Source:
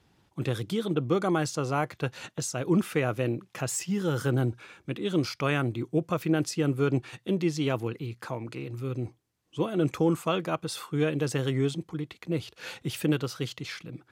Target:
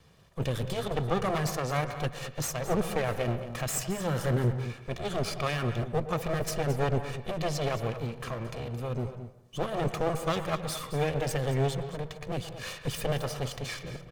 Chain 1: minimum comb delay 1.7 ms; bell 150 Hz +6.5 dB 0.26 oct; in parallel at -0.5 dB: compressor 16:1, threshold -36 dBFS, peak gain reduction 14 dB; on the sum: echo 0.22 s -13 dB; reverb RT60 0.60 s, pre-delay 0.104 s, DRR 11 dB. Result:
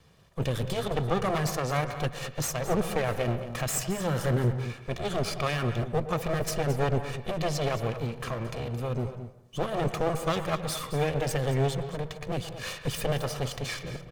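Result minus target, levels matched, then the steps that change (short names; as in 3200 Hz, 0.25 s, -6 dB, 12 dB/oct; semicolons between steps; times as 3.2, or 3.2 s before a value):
compressor: peak gain reduction -9 dB
change: compressor 16:1, threshold -45.5 dBFS, peak gain reduction 23 dB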